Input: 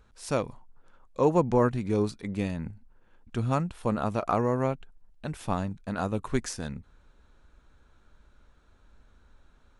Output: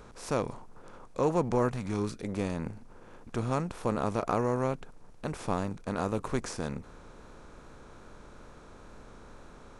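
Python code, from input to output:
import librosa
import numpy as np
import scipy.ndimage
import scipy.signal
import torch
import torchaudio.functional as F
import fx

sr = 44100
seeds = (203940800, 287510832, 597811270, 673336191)

y = fx.bin_compress(x, sr, power=0.6)
y = fx.peak_eq(y, sr, hz=fx.line((1.69, 270.0), (2.28, 1200.0)), db=-14.0, octaves=0.56, at=(1.69, 2.28), fade=0.02)
y = fx.wow_flutter(y, sr, seeds[0], rate_hz=2.1, depth_cents=26.0)
y = y * librosa.db_to_amplitude(-6.0)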